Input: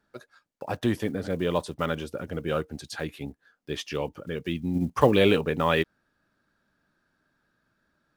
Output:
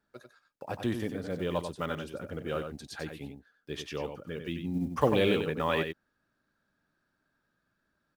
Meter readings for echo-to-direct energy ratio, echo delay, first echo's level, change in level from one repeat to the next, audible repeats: −7.0 dB, 94 ms, −7.0 dB, repeats not evenly spaced, 1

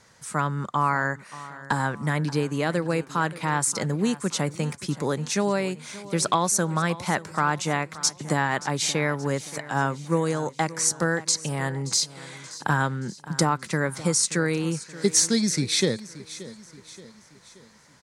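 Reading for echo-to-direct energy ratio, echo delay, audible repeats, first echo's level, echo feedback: −16.0 dB, 577 ms, 3, −17.0 dB, 48%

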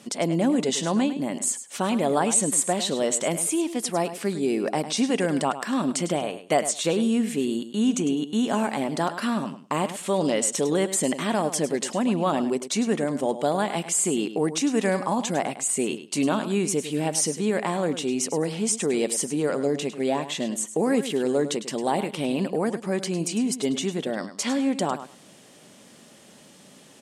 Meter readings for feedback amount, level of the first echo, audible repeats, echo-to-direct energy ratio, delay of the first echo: 16%, −12.0 dB, 2, −12.0 dB, 103 ms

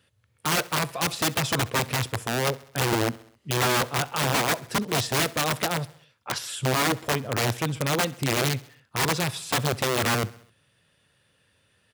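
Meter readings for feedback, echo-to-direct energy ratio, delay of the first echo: 57%, −20.0 dB, 66 ms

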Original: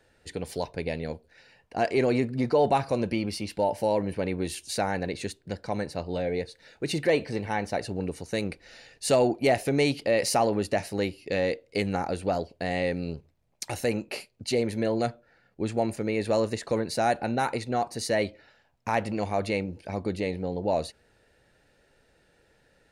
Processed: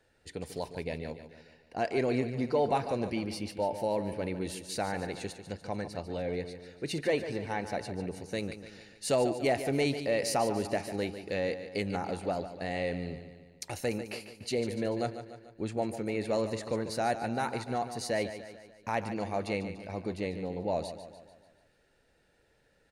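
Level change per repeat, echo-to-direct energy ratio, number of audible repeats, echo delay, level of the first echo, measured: −5.5 dB, −9.5 dB, 5, 146 ms, −11.0 dB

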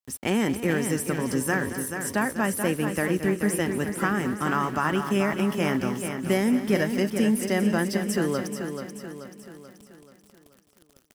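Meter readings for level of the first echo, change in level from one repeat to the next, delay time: −13.0 dB, repeats not evenly spaced, 222 ms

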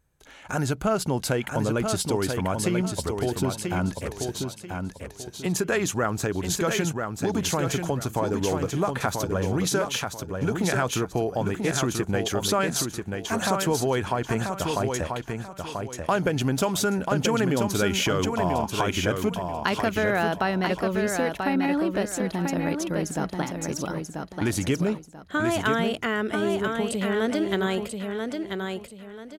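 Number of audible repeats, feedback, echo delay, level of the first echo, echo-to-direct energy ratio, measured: 3, 29%, 987 ms, −5.0 dB, −4.5 dB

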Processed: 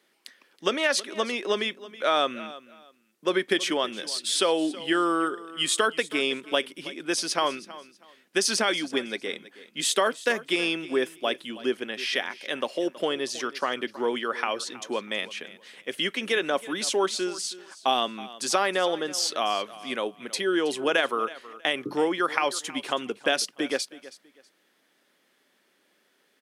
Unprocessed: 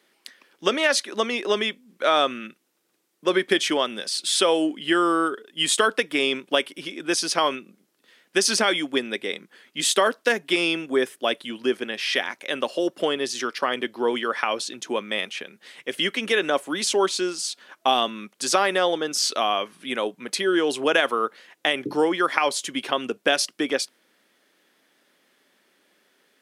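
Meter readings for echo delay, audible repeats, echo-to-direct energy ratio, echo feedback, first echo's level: 322 ms, 2, −17.5 dB, 24%, −17.5 dB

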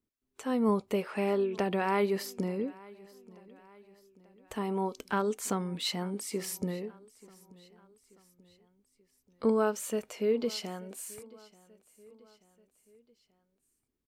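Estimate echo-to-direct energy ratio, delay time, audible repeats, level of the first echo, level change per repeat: −21.5 dB, 884 ms, 3, −22.5 dB, −6.0 dB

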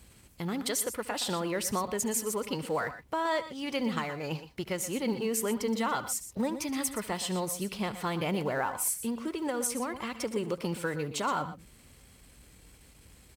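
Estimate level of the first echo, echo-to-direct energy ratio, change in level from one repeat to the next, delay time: −19.5 dB, −11.0 dB, repeats not evenly spaced, 71 ms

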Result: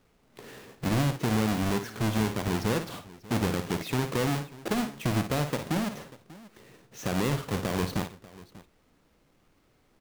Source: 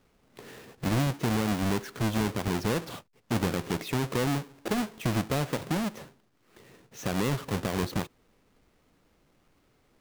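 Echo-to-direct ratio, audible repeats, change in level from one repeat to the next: −8.5 dB, 2, repeats not evenly spaced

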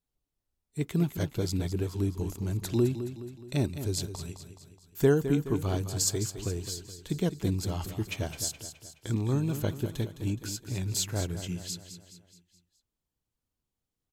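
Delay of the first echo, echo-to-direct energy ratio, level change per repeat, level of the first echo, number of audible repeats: 211 ms, −9.0 dB, −6.0 dB, −10.5 dB, 5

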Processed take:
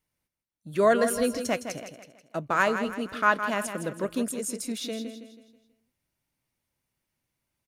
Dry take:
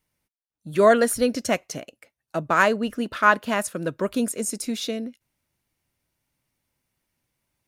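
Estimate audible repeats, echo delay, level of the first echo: 4, 162 ms, −9.0 dB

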